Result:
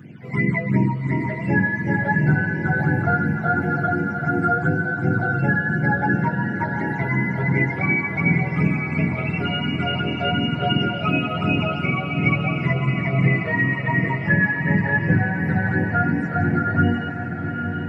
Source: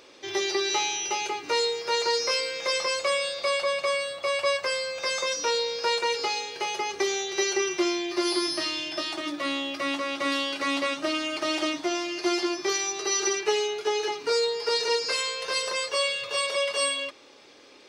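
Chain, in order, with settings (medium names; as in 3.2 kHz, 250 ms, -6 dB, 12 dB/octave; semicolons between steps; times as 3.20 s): spectrum inverted on a logarithmic axis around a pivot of 890 Hz; phase shifter stages 8, 2.8 Hz, lowest notch 270–1300 Hz; echo that smears into a reverb 842 ms, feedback 56%, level -7 dB; trim +8 dB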